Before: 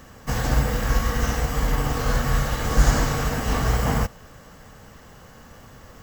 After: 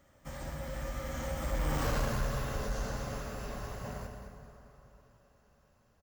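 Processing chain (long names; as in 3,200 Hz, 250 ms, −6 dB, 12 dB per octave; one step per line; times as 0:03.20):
source passing by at 0:01.86, 27 m/s, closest 4.1 metres
parametric band 560 Hz +10.5 dB 0.22 octaves
notch filter 490 Hz, Q 12
in parallel at +3 dB: downward compressor, threshold −38 dBFS, peak gain reduction 18.5 dB
on the sum: soft clipping −22 dBFS, distortion −11 dB
on a send: single-tap delay 211 ms −9.5 dB
on the sum: dense smooth reverb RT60 3.5 s, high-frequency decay 0.6×, DRR 6 dB
level −5.5 dB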